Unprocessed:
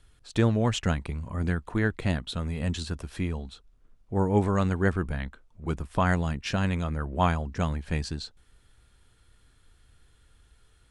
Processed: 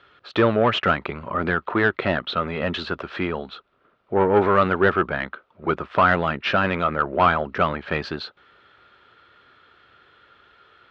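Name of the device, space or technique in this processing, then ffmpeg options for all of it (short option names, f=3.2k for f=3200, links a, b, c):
overdrive pedal into a guitar cabinet: -filter_complex "[0:a]asplit=2[a][b];[b]highpass=f=720:p=1,volume=20dB,asoftclip=type=tanh:threshold=-9dB[c];[a][c]amix=inputs=2:normalize=0,lowpass=f=4.6k:p=1,volume=-6dB,highpass=98,equalizer=f=380:t=q:w=4:g=6,equalizer=f=580:t=q:w=4:g=6,equalizer=f=1.3k:t=q:w=4:g=9,lowpass=f=3.7k:w=0.5412,lowpass=f=3.7k:w=1.3066,volume=-1dB"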